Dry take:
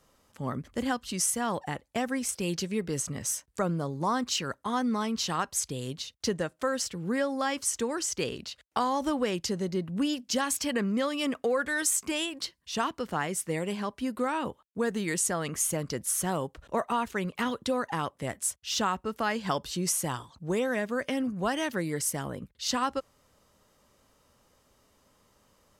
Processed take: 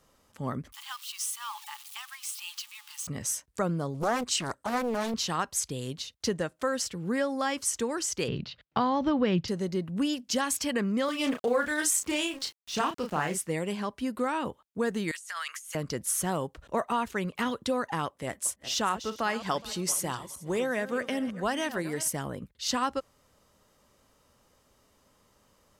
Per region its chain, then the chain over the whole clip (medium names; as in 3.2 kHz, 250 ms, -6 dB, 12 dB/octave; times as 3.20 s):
0.72–3.07 s: zero-crossing glitches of -29 dBFS + rippled Chebyshev high-pass 820 Hz, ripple 9 dB
3.94–5.14 s: peaking EQ 8.3 kHz +12.5 dB 0.25 oct + loudspeaker Doppler distortion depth 0.94 ms
8.28–9.48 s: low-pass 4.4 kHz 24 dB/octave + peaking EQ 140 Hz +15 dB 1.1 oct
11.05–13.39 s: small samples zeroed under -45 dBFS + doubling 33 ms -5.5 dB + loudspeaker Doppler distortion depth 0.17 ms
15.11–15.75 s: high-pass 1.3 kHz 24 dB/octave + compressor with a negative ratio -41 dBFS
18.06–22.08 s: backward echo that repeats 209 ms, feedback 41%, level -13 dB + peaking EQ 130 Hz -4.5 dB 1.7 oct
whole clip: none